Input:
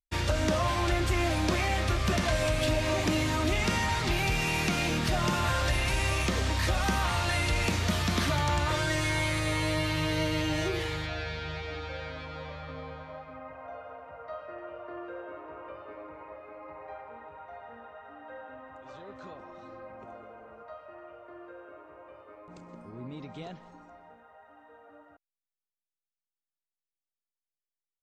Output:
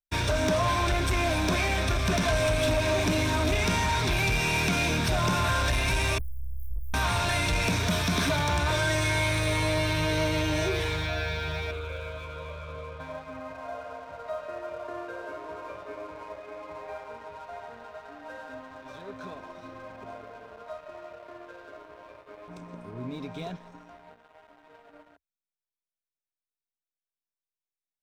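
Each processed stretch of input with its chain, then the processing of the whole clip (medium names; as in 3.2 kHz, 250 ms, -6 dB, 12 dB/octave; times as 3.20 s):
6.18–6.94 s: partial rectifier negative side -12 dB + inverse Chebyshev band-stop 320–4000 Hz, stop band 80 dB
11.71–13.00 s: low-pass 2.7 kHz 6 dB/octave + static phaser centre 1.2 kHz, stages 8 + loudspeaker Doppler distortion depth 0.16 ms
whole clip: rippled EQ curve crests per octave 1.6, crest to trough 8 dB; waveshaping leveller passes 2; trim -4 dB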